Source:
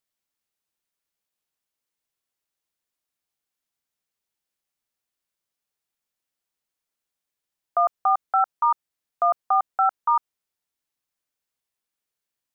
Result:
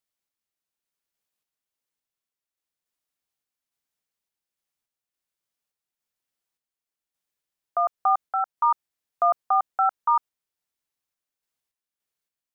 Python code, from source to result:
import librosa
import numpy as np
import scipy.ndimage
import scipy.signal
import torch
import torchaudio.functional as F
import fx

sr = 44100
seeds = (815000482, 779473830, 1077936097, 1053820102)

y = fx.tremolo_random(x, sr, seeds[0], hz=3.5, depth_pct=55)